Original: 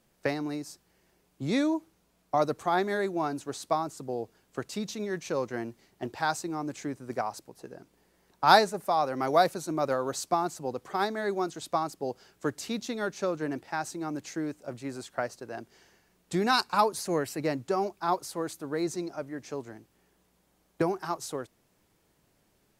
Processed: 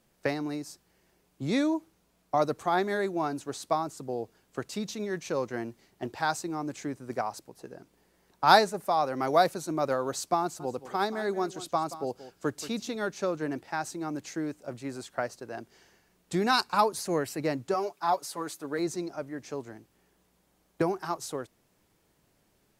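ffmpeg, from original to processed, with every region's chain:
-filter_complex "[0:a]asettb=1/sr,asplit=3[a][b][c];[a]atrim=end=10.424[d];[b]atrim=start=10.42:end=12.96,asetpts=PTS-STARTPTS,afade=t=in:d=0.004:c=qsin,afade=t=out:st=2.536:d=0.004:c=qsin,equalizer=f=1.9k:w=5.3:g=-3.5,aecho=1:1:179:0.188,atrim=end_sample=112014[e];[c]atrim=start=12.956[f];[d][e]acrossfade=d=0.004:c1=hsin:c2=qsin[g];[g][f]acrossfade=d=0.004:c1=qsin:c2=hsin,asettb=1/sr,asplit=3[h][i][j];[h]atrim=end=17.744[k];[i]atrim=start=17.74:end=18.79,asetpts=PTS-STARTPTS,afade=t=in:d=0.004:c=qsin,afade=t=out:st=1.046:d=0.004:c=qsin,highpass=f=360:p=1,aecho=1:1:7:0.64,atrim=end_sample=46305[l];[j]atrim=start=18.786[m];[k][l]acrossfade=d=0.004:c1=hsin:c2=qsin[n];[n][m]acrossfade=d=0.004:c1=qsin:c2=hsin"

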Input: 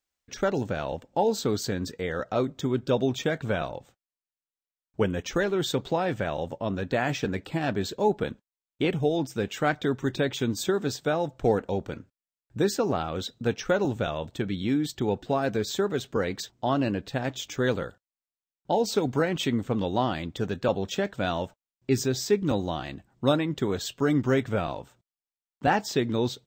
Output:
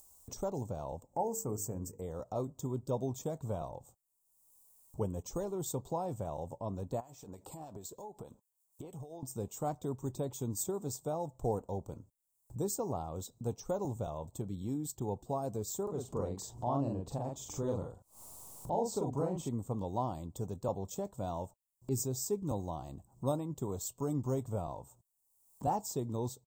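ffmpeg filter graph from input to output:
-filter_complex "[0:a]asettb=1/sr,asplit=3[a][b][c];[a]atrim=end=1.074[d];[b]atrim=start=1.07:end=2.02,asetpts=PTS-STARTPTS,afade=t=in:d=0.004:c=qsin,afade=t=out:st=0.946:d=0.004:c=qsin,asuperstop=centerf=3800:order=4:qfactor=1.3,bandreject=f=50:t=h:w=6,bandreject=f=100:t=h:w=6,bandreject=f=150:t=h:w=6,bandreject=f=200:t=h:w=6,bandreject=f=250:t=h:w=6,bandreject=f=300:t=h:w=6,bandreject=f=350:t=h:w=6,bandreject=f=400:t=h:w=6,bandreject=f=450:t=h:w=6,bandreject=f=500:t=h:w=6[e];[c]atrim=start=2.016[f];[d][e]acrossfade=d=0.004:c1=hsin:c2=qsin[g];[g][f]acrossfade=d=0.004:c1=qsin:c2=hsin,asettb=1/sr,asplit=3[h][i][j];[h]atrim=end=7.004[k];[i]atrim=start=7:end=9.23,asetpts=PTS-STARTPTS,afade=t=in:d=0.004:c=qsin,afade=t=out:st=2.226:d=0.004:c=qsin,lowshelf=f=270:g=-10,acompressor=threshold=-36dB:ratio=8:attack=3.2:release=140:knee=1:detection=peak,acrossover=split=1900[l][m];[l]aeval=exprs='val(0)*(1-0.5/2+0.5/2*cos(2*PI*6.5*n/s))':c=same[n];[m]aeval=exprs='val(0)*(1-0.5/2-0.5/2*cos(2*PI*6.5*n/s))':c=same[o];[n][o]amix=inputs=2:normalize=0[p];[j]atrim=start=9.226[q];[k][p]acrossfade=d=0.004:c1=hsin:c2=qsin[r];[r][q]acrossfade=d=0.004:c1=qsin:c2=hsin,asettb=1/sr,asplit=3[s][t][u];[s]atrim=end=15.834[v];[t]atrim=start=15.83:end=19.49,asetpts=PTS-STARTPTS,afade=t=in:d=0.004:c=qsin,afade=t=out:st=3.656:d=0.004:c=qsin,aemphasis=mode=reproduction:type=50kf,acompressor=mode=upward:threshold=-27dB:ratio=2.5:attack=3.2:release=140:knee=2.83:detection=peak,asplit=2[w][x];[x]adelay=43,volume=-2.5dB[y];[w][y]amix=inputs=2:normalize=0,atrim=end_sample=161406[z];[u]atrim=start=19.486[aa];[v][z]acrossfade=d=0.004:c1=hsin:c2=qsin[ab];[ab][aa]acrossfade=d=0.004:c1=qsin:c2=hsin,firequalizer=gain_entry='entry(110,0);entry(210,-6);entry(300,-7);entry(1000,-1);entry(1600,-29);entry(7700,7)':delay=0.05:min_phase=1,acompressor=mode=upward:threshold=-33dB:ratio=2.5,volume=-5.5dB"

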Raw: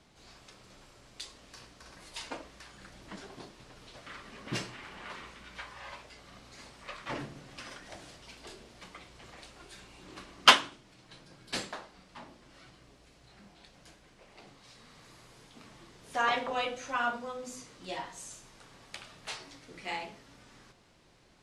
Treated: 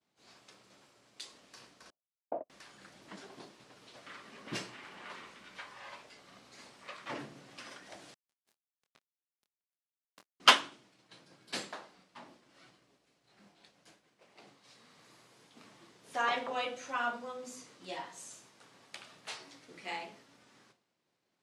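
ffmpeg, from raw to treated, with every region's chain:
-filter_complex "[0:a]asettb=1/sr,asplit=3[a][b][c];[a]atrim=end=1.904[d];[b]atrim=start=1.9:end=2.5,asetpts=PTS-STARTPTS,afade=t=in:d=0.004:c=qsin,afade=t=out:st=0.596:d=0.004:c=qsin,lowpass=f=670:t=q:w=5.3,agate=range=-37dB:threshold=-38dB:ratio=16:release=100:detection=peak[e];[c]atrim=start=2.496[f];[d][e]acrossfade=d=0.004:c1=hsin:c2=qsin[g];[g][f]acrossfade=d=0.004:c1=qsin:c2=hsin,asettb=1/sr,asplit=3[h][i][j];[h]atrim=end=8.144[k];[i]atrim=start=8.14:end=10.4,asetpts=PTS-STARTPTS,afade=t=in:d=0.004:c=qsin,afade=t=out:st=2.256:d=0.004:c=qsin,acrusher=bits=5:mix=0:aa=0.5,asplit=2[l][m];[m]adelay=26,volume=-9dB[n];[l][n]amix=inputs=2:normalize=0,atrim=end_sample=99666[o];[j]atrim=start=10.396[p];[k][o]acrossfade=d=0.004:c1=hsin:c2=qsin[q];[q][p]acrossfade=d=0.004:c1=qsin:c2=hsin,highpass=170,agate=range=-33dB:threshold=-54dB:ratio=3:detection=peak,volume=-3dB"

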